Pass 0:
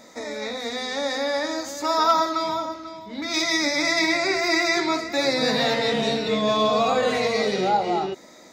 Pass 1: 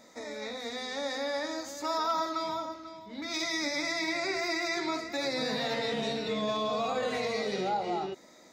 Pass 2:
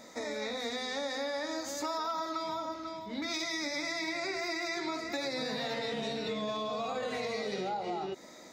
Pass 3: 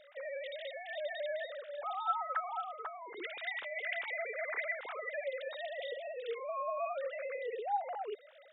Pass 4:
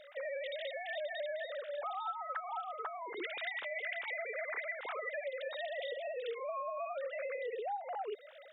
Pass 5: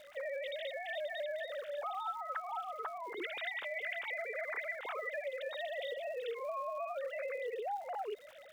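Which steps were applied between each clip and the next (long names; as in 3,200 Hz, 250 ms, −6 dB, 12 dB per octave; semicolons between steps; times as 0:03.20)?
brickwall limiter −14.5 dBFS, peak gain reduction 4 dB; level −8 dB
downward compressor 6 to 1, threshold −37 dBFS, peak gain reduction 10.5 dB; level +4.5 dB
three sine waves on the formant tracks; level −3.5 dB
downward compressor 12 to 1, threshold −40 dBFS, peak gain reduction 13.5 dB; level +4 dB
surface crackle 300 per second −51 dBFS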